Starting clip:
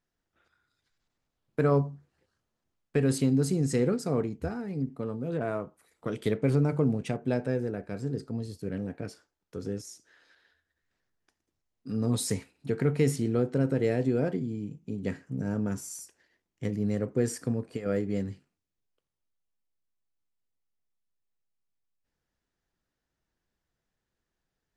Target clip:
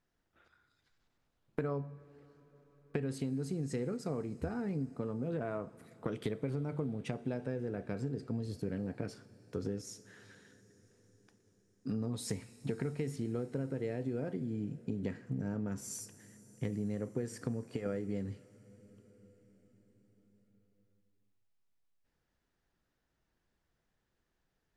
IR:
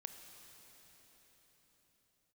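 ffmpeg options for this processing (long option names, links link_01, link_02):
-filter_complex "[0:a]highshelf=frequency=5900:gain=-10.5,acompressor=threshold=-36dB:ratio=10,asplit=2[link_01][link_02];[1:a]atrim=start_sample=2205,asetrate=31752,aresample=44100,highshelf=frequency=4600:gain=10[link_03];[link_02][link_03]afir=irnorm=-1:irlink=0,volume=-10dB[link_04];[link_01][link_04]amix=inputs=2:normalize=0,volume=1.5dB"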